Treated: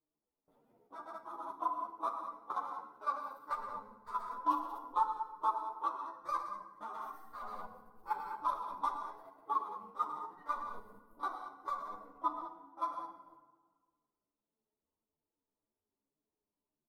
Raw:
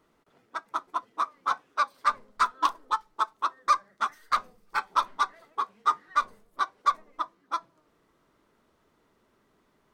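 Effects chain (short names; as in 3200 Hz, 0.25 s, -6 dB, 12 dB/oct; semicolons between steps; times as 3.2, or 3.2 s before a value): time stretch by phase-locked vocoder 1.7×; limiter -22 dBFS, peak gain reduction 11 dB; band shelf 3300 Hz -15 dB 3 oct; loudspeakers at several distances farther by 42 m -6 dB, 65 m -9 dB; gate with hold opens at -56 dBFS; level quantiser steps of 12 dB; FDN reverb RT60 1.5 s, low-frequency decay 1.2×, high-frequency decay 0.55×, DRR 6 dB; dynamic EQ 930 Hz, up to +3 dB, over -49 dBFS, Q 0.87; ensemble effect; gain +4 dB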